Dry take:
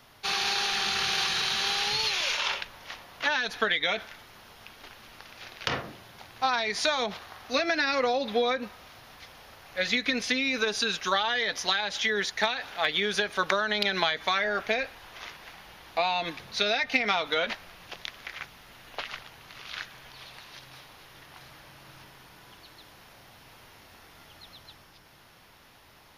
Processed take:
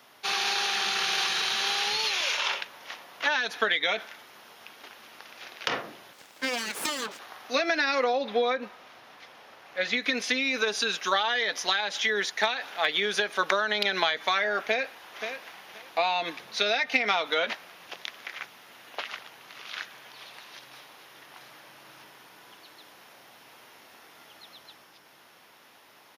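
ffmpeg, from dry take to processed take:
ffmpeg -i in.wav -filter_complex "[0:a]asettb=1/sr,asplit=3[link_01][link_02][link_03];[link_01]atrim=end=6.134[link_04];[link_02]atrim=start=6.13:end=7.19,asetpts=PTS-STARTPTS,afade=type=in:duration=0.004:curve=qsin,afade=type=out:start_time=1.056:duration=0.004:curve=qsin,aeval=exprs='abs(val(0))':channel_layout=same[link_05];[link_03]atrim=start=7.186[link_06];[link_04][link_05]acrossfade=duration=0.004:curve1=hsin:curve2=qsin[link_07];[link_07][link_06]acrossfade=duration=0.004:curve1=qsin:curve2=hsin,asettb=1/sr,asplit=3[link_08][link_09][link_10];[link_08]atrim=end=8.044[link_11];[link_09]atrim=start=8.04:end=10.02,asetpts=PTS-STARTPTS,afade=type=in:duration=0.004:curve=qsin,afade=type=out:start_time=1.976:duration=0.004:curve=qsin,lowpass=frequency=3700:poles=1[link_12];[link_10]atrim=start=10.016[link_13];[link_11][link_12]acrossfade=duration=0.004:curve1=hsin:curve2=qsin[link_14];[link_14][link_13]acrossfade=duration=0.004:curve1=qsin:curve2=hsin,asplit=2[link_15][link_16];[link_16]afade=type=in:start_time=14.61:duration=0.01,afade=type=out:start_time=15.28:duration=0.01,aecho=0:1:530|1060:0.375837|0.0563756[link_17];[link_15][link_17]amix=inputs=2:normalize=0,highpass=260,equalizer=frequency=4400:width=4:gain=-2.5,volume=1dB" out.wav

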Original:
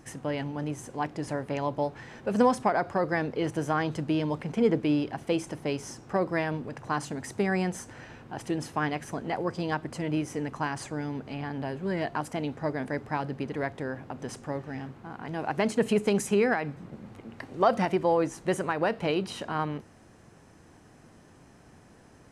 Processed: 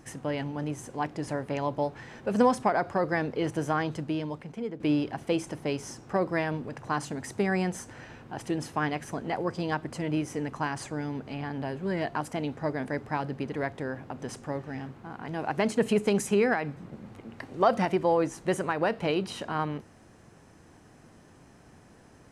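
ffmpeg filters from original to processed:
ffmpeg -i in.wav -filter_complex "[0:a]asplit=2[link_01][link_02];[link_01]atrim=end=4.8,asetpts=PTS-STARTPTS,afade=type=out:start_time=3.69:duration=1.11:silence=0.16788[link_03];[link_02]atrim=start=4.8,asetpts=PTS-STARTPTS,afade=type=in:duration=0.004:curve=hsin:silence=0.16788[link_04];[link_03][link_04]concat=n=2:v=0:a=1" out.wav

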